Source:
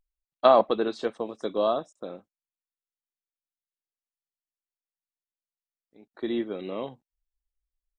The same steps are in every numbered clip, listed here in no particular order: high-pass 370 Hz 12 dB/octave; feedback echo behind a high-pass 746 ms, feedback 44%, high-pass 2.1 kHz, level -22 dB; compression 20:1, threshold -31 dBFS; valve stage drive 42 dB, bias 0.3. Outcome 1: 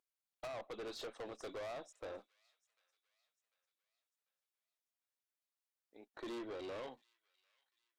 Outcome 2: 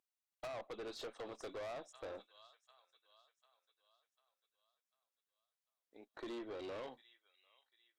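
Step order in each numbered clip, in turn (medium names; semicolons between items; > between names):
high-pass > compression > valve stage > feedback echo behind a high-pass; feedback echo behind a high-pass > compression > high-pass > valve stage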